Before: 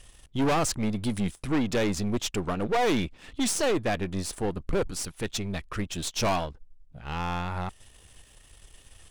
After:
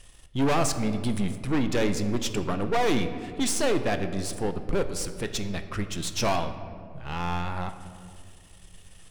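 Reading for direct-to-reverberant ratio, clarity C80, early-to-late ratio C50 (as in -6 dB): 8.0 dB, 11.5 dB, 10.5 dB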